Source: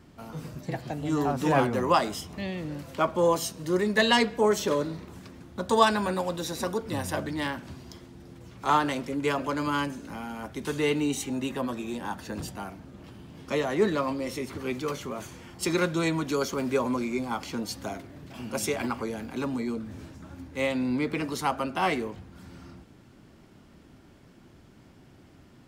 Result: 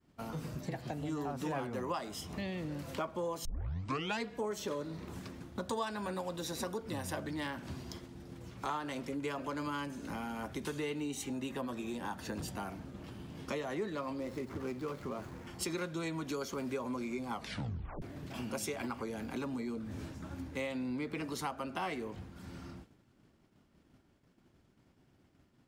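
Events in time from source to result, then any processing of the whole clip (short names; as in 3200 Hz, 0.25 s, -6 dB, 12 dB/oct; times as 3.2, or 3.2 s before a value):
3.45 tape start 0.77 s
14.2–15.47 median filter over 15 samples
17.32 tape stop 0.70 s
whole clip: expander -43 dBFS; compressor 4:1, threshold -38 dBFS; gain +1 dB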